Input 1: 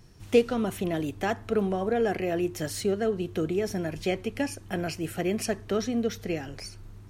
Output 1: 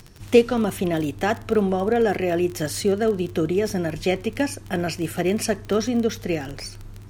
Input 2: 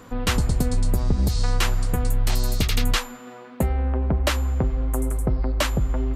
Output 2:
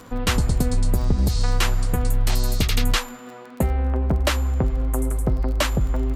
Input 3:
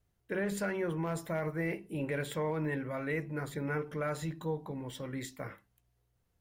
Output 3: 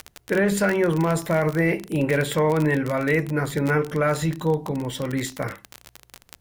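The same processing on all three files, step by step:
crackle 33/s -33 dBFS; match loudness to -23 LUFS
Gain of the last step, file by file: +6.0, +1.0, +13.0 dB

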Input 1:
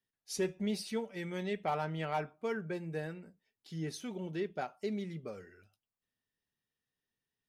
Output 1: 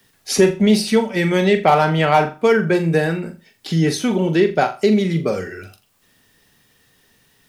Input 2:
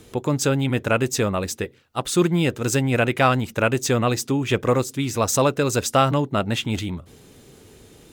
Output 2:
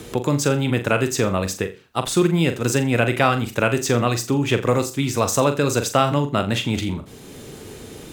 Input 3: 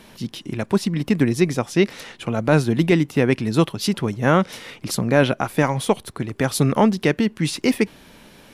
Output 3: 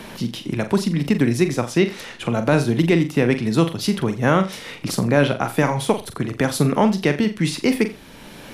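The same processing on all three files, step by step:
flutter echo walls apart 7.2 m, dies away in 0.27 s; three-band squash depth 40%; normalise peaks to -2 dBFS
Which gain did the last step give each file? +20.5, +0.5, -0.5 dB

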